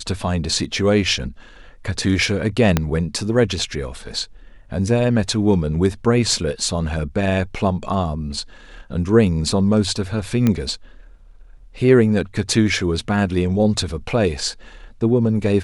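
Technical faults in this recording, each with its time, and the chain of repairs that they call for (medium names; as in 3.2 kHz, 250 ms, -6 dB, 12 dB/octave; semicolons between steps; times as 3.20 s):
2.77 s: pop -2 dBFS
10.47 s: pop -6 dBFS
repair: de-click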